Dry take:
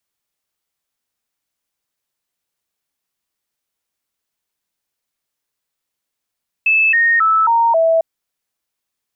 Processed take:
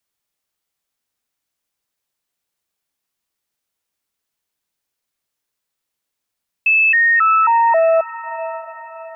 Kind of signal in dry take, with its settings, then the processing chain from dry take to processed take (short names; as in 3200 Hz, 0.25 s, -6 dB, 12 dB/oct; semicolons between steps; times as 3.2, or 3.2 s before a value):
stepped sine 2620 Hz down, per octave 2, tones 5, 0.27 s, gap 0.00 s -10 dBFS
diffused feedback echo 0.67 s, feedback 40%, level -14 dB